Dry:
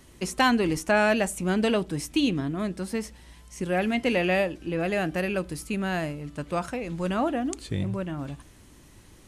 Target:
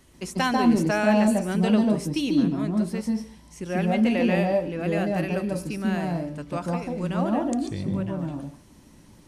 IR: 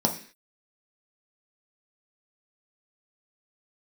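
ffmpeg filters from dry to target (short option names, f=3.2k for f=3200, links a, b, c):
-filter_complex "[0:a]asplit=2[a][b];[1:a]atrim=start_sample=2205,adelay=142[c];[b][c]afir=irnorm=-1:irlink=0,volume=-13dB[d];[a][d]amix=inputs=2:normalize=0,volume=-3.5dB"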